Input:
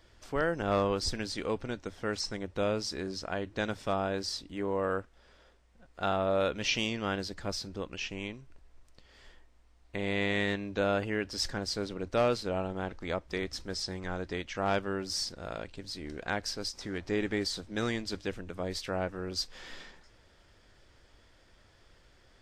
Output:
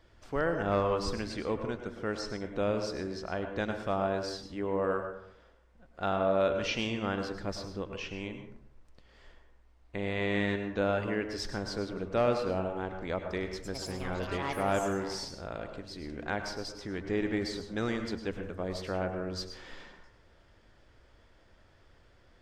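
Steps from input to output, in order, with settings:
high-shelf EQ 3,300 Hz −9 dB
0:13.51–0:15.89: delay with pitch and tempo change per echo 114 ms, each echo +6 semitones, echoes 2, each echo −6 dB
dense smooth reverb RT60 0.65 s, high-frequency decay 0.45×, pre-delay 90 ms, DRR 6 dB

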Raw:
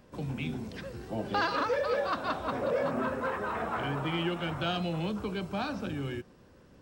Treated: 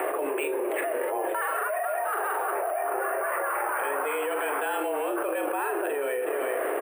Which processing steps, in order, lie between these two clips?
on a send: multi-tap delay 41/371 ms −10/−20 dB
on the sum: single-sideband voice off tune +140 Hz 250–2,400 Hz
bad sample-rate conversion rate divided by 4×, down none, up hold
envelope flattener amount 100%
level −2.5 dB

